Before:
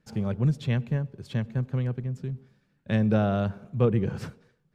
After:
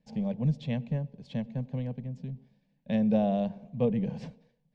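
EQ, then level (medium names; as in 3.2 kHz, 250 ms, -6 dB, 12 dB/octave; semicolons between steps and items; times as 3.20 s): distance through air 140 m; static phaser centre 360 Hz, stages 6; 0.0 dB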